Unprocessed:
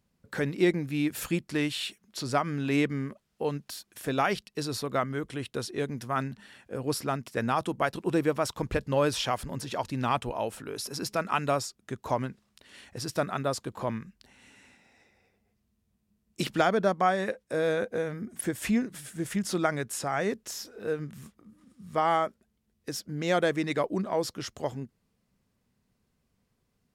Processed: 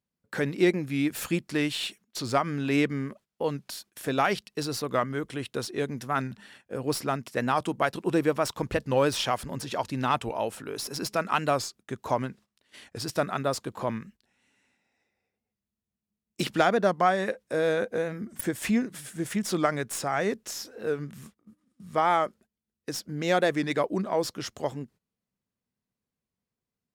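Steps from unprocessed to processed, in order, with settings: tracing distortion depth 0.021 ms; gate -52 dBFS, range -15 dB; low shelf 71 Hz -9.5 dB; record warp 45 rpm, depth 100 cents; gain +2 dB

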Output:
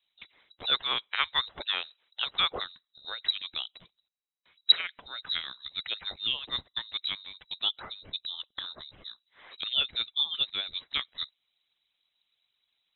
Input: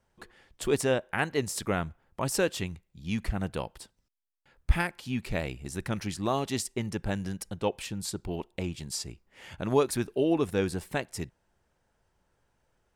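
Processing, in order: harmonic-percussive split harmonic -17 dB; inverted band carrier 3900 Hz; 0.64–2.62 band shelf 820 Hz +8.5 dB 2.4 oct

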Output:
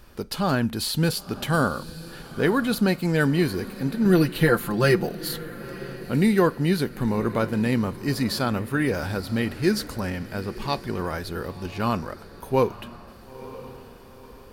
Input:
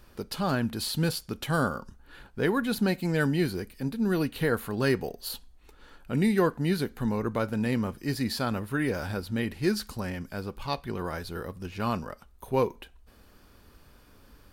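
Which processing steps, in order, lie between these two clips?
4.05–5.07 comb 5.8 ms, depth 87%; diffused feedback echo 0.96 s, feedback 44%, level -15.5 dB; gain +4.5 dB

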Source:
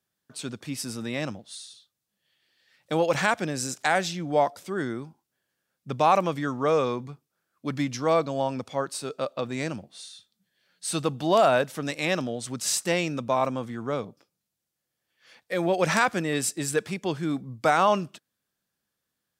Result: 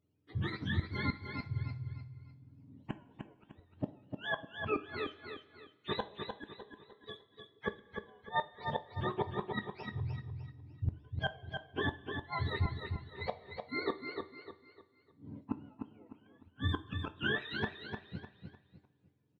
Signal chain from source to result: spectrum mirrored in octaves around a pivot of 700 Hz; small resonant body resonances 310/450 Hz, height 8 dB, ringing for 25 ms; flipped gate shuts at -20 dBFS, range -42 dB; feedback echo 0.302 s, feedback 34%, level -6 dB; two-slope reverb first 0.27 s, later 1.9 s, from -18 dB, DRR 8.5 dB; gain -1.5 dB

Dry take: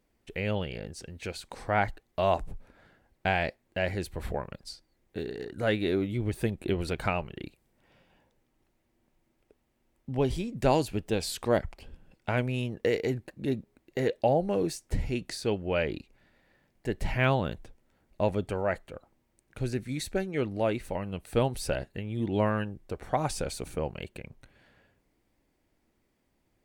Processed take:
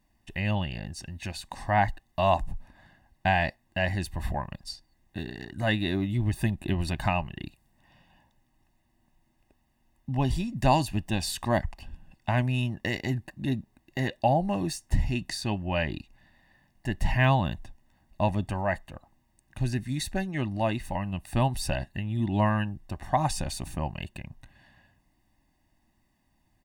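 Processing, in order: comb 1.1 ms, depth 96%

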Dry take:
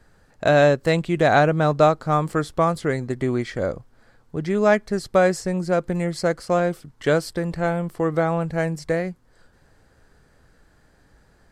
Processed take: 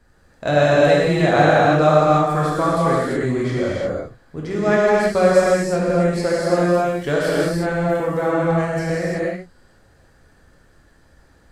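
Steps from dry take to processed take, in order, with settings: non-linear reverb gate 0.38 s flat, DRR -7 dB; gain -4 dB

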